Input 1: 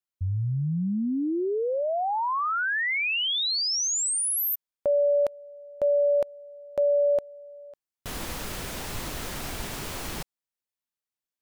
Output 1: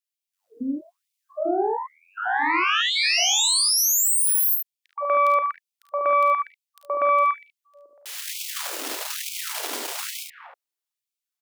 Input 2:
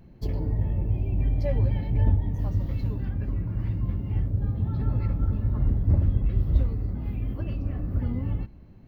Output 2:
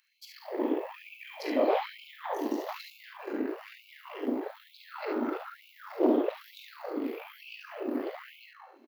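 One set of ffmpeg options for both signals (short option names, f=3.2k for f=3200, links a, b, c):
-filter_complex "[0:a]acrossover=split=560|1700[a][b][c];[a]adelay=120[d];[b]adelay=240[e];[d][e][c]amix=inputs=3:normalize=0,aeval=exprs='0.355*(cos(1*acos(clip(val(0)/0.355,-1,1)))-cos(1*PI/2))+0.126*(cos(8*acos(clip(val(0)/0.355,-1,1)))-cos(8*PI/2))':c=same,asplit=2[f][g];[g]aecho=0:1:37|50|72:0.316|0.398|0.531[h];[f][h]amix=inputs=2:normalize=0,afftfilt=real='re*gte(b*sr/1024,230*pow(2200/230,0.5+0.5*sin(2*PI*1.1*pts/sr)))':imag='im*gte(b*sr/1024,230*pow(2200/230,0.5+0.5*sin(2*PI*1.1*pts/sr)))':win_size=1024:overlap=0.75,volume=2dB"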